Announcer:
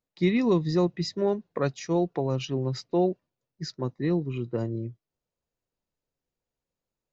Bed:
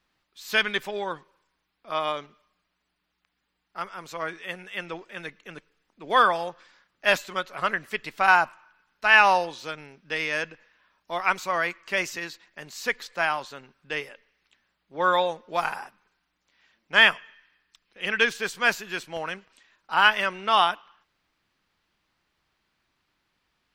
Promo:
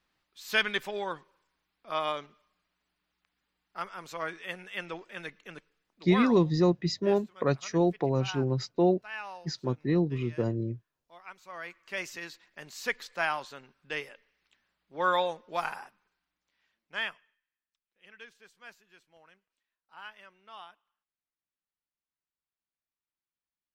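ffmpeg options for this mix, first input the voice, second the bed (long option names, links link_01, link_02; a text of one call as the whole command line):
ffmpeg -i stem1.wav -i stem2.wav -filter_complex "[0:a]adelay=5850,volume=0dB[link_01];[1:a]volume=15.5dB,afade=type=out:start_time=5.49:duration=0.96:silence=0.1,afade=type=in:start_time=11.39:duration=1.14:silence=0.112202,afade=type=out:start_time=15.32:duration=2.09:silence=0.0707946[link_02];[link_01][link_02]amix=inputs=2:normalize=0" out.wav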